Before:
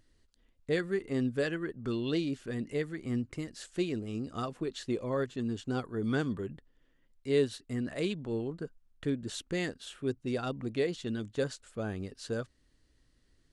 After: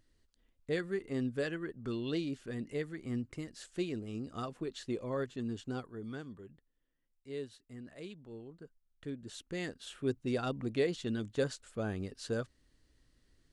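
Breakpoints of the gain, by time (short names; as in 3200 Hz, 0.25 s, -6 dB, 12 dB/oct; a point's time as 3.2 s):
5.64 s -4 dB
6.22 s -14 dB
8.44 s -14 dB
9.49 s -7 dB
9.99 s -0.5 dB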